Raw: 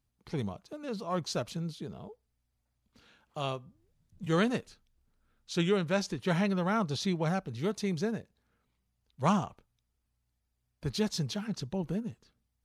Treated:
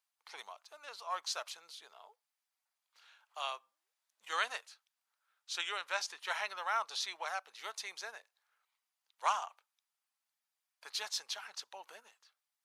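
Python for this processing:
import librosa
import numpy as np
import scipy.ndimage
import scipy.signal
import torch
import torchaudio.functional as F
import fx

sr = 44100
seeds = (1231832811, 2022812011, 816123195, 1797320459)

y = scipy.signal.sosfilt(scipy.signal.butter(4, 830.0, 'highpass', fs=sr, output='sos'), x)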